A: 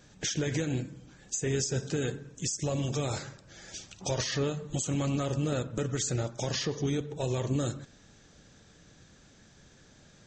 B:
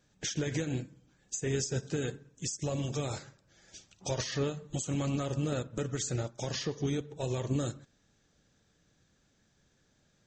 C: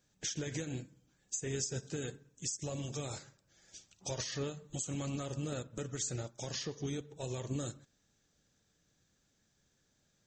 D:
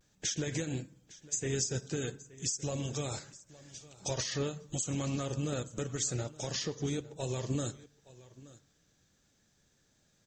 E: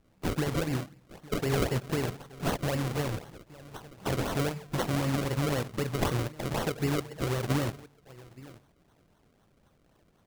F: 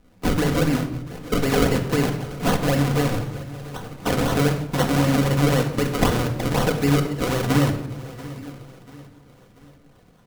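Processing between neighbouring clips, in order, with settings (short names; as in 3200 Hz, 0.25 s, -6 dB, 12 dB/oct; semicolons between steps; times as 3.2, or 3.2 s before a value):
upward expander 1.5:1, over -50 dBFS; gain -1 dB
high shelf 5800 Hz +9.5 dB; gain -6.5 dB
echo 0.867 s -20 dB; vibrato 0.33 Hz 23 cents; gain +4 dB
decimation with a swept rate 35×, swing 100% 3.9 Hz; gain +5.5 dB
feedback echo 0.687 s, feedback 45%, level -19 dB; shoebox room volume 2300 m³, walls furnished, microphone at 1.9 m; gain +7.5 dB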